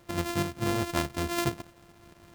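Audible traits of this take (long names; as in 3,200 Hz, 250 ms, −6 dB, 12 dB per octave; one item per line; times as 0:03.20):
a buzz of ramps at a fixed pitch in blocks of 128 samples
tremolo saw up 4.7 Hz, depth 50%
a quantiser's noise floor 10 bits, dither none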